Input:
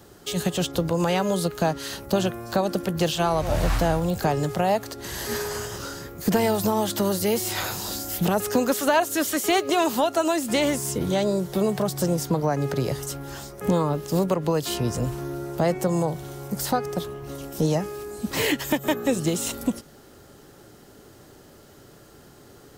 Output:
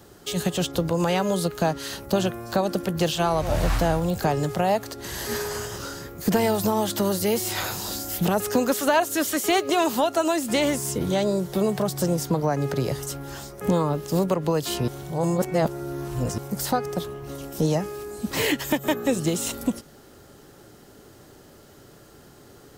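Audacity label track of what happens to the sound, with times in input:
14.880000	16.380000	reverse

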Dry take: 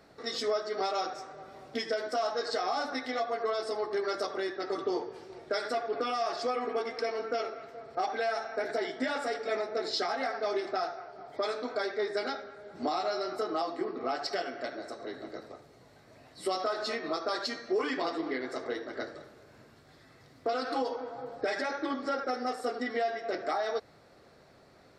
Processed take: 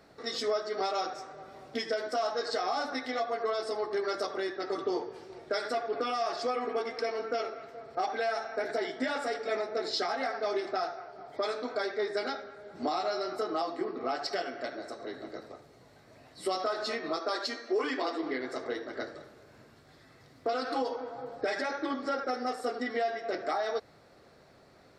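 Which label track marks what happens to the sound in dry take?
17.190000	18.230000	Butterworth high-pass 230 Hz

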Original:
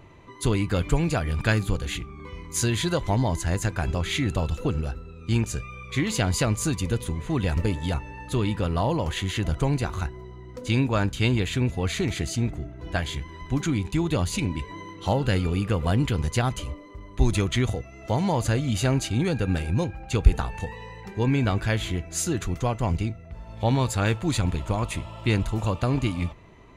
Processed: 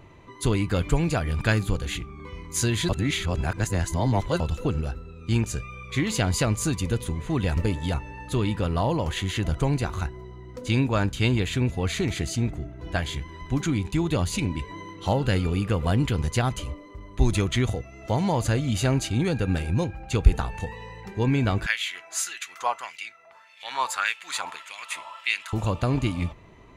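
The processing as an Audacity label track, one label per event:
2.890000	4.400000	reverse
21.660000	25.530000	auto-filter high-pass sine 1.7 Hz 900–2,400 Hz

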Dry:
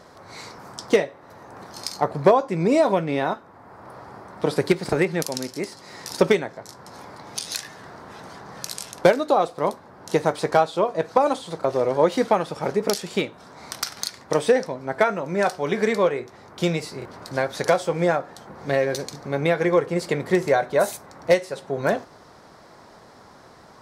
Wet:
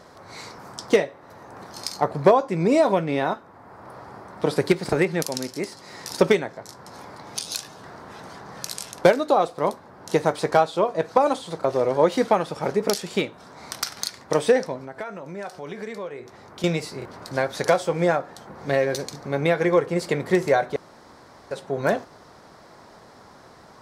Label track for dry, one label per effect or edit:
7.420000	7.840000	parametric band 1,900 Hz −12 dB 0.4 octaves
14.840000	16.640000	downward compressor 2.5 to 1, threshold −36 dBFS
20.760000	21.510000	fill with room tone

